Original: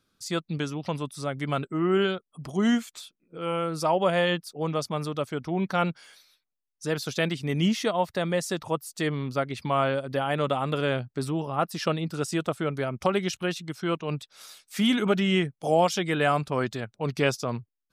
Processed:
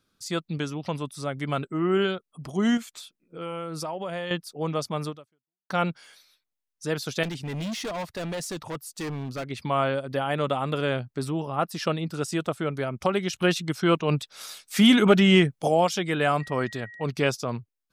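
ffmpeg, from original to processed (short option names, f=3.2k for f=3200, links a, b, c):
-filter_complex "[0:a]asettb=1/sr,asplit=3[a][b][c];[a]atrim=end=2.774[d];[b]atrim=start=2.77:end=4.31,asetpts=PTS-STARTPTS,afade=t=in:d=0.004:c=qsin,afade=t=out:st=1.536:d=0.004:c=qsin,acompressor=threshold=-29dB:ratio=6:attack=3.2:release=140:knee=1:detection=peak[e];[c]atrim=start=4.306[f];[d][e]acrossfade=d=0.004:c1=hsin:c2=qsin[g];[g][f]acrossfade=d=0.004:c1=qsin:c2=hsin,asettb=1/sr,asplit=3[h][i][j];[h]atrim=end=7.234[k];[i]atrim=start=7.23:end=9.5,asetpts=PTS-STARTPTS,afade=t=in:d=0.004:c=qsin,afade=t=out:st=2.266:d=0.004:c=qsin,asoftclip=type=hard:threshold=-29dB[l];[j]atrim=start=9.496[m];[k][l]acrossfade=d=0.004:c1=hsin:c2=qsin[n];[n][m]acrossfade=d=0.004:c1=qsin:c2=hsin,asplit=3[o][p][q];[o]afade=t=out:st=13.37:d=0.02[r];[p]acontrast=66,afade=t=in:st=13.37:d=0.02,afade=t=out:st=15.67:d=0.02[s];[q]afade=t=in:st=15.67:d=0.02[t];[r][s][t]amix=inputs=3:normalize=0,asettb=1/sr,asplit=3[u][v][w];[u]atrim=end=16.404[x];[v]atrim=start=16.4:end=17.04,asetpts=PTS-STARTPTS,afade=t=in:d=0.004:c=qsin,afade=t=out:st=0.636:d=0.004:c=qsin,aeval=exprs='val(0)+0.00794*sin(2*PI*1900*n/s)':c=same[y];[w]atrim=start=17.036[z];[x][y]acrossfade=d=0.004:c1=hsin:c2=qsin[aa];[aa][z]acrossfade=d=0.004:c1=qsin:c2=hsin,asplit=2[ab][ac];[ab]atrim=end=5.7,asetpts=PTS-STARTPTS,afade=t=out:st=5.09:d=0.61:c=exp[ad];[ac]atrim=start=5.7,asetpts=PTS-STARTPTS,afade=t=in:d=0.004:c=hsin[ae];[ad][ae]concat=n=2:v=0:a=1"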